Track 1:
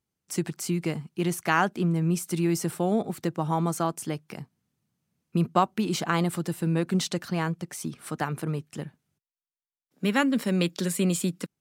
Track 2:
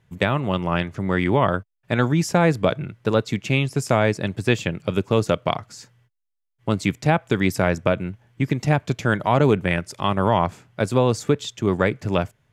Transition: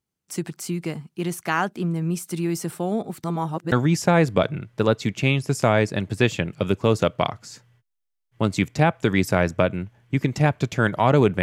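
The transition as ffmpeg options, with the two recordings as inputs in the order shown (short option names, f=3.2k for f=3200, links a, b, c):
-filter_complex "[0:a]apad=whole_dur=11.42,atrim=end=11.42,asplit=2[a][b];[a]atrim=end=3.242[c];[b]atrim=start=3.238:end=3.722,asetpts=PTS-STARTPTS,areverse[d];[1:a]atrim=start=1.988:end=9.69[e];[c][d]acrossfade=d=0.004:c1=hsin:c2=hsin[f];[f][e]acrossfade=d=0.004:c1=hsin:c2=hsin"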